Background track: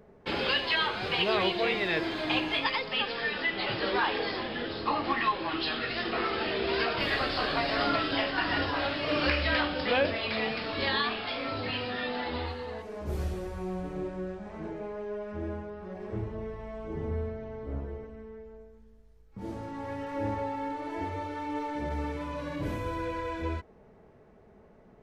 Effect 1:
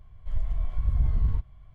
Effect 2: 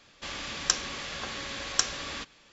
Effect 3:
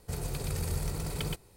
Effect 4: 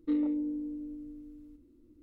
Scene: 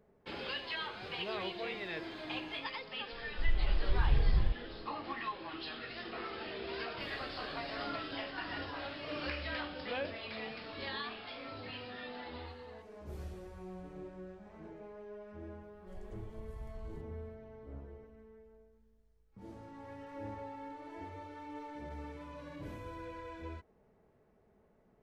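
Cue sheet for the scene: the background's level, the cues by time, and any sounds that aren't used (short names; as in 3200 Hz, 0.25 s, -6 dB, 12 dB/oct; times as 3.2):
background track -12 dB
3.12 add 1 -4.5 dB + comb 5.9 ms, depth 41%
15.61 add 1 -15 dB + tone controls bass -8 dB, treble +15 dB
not used: 2, 3, 4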